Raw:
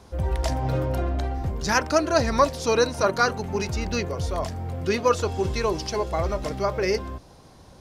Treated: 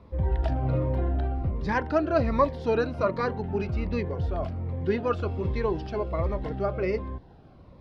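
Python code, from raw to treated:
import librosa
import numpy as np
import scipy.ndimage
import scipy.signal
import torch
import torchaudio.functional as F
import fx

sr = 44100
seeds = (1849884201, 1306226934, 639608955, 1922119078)

y = fx.air_absorb(x, sr, metres=440.0)
y = fx.notch_cascade(y, sr, direction='falling', hz=1.3)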